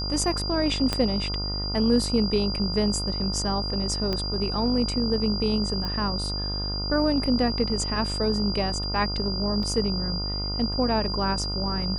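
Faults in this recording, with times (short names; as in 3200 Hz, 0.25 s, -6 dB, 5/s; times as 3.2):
buzz 50 Hz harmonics 29 -31 dBFS
tone 4800 Hz -30 dBFS
0.93 pop -10 dBFS
4.13 pop -15 dBFS
5.85 pop -19 dBFS
9.63 gap 2.1 ms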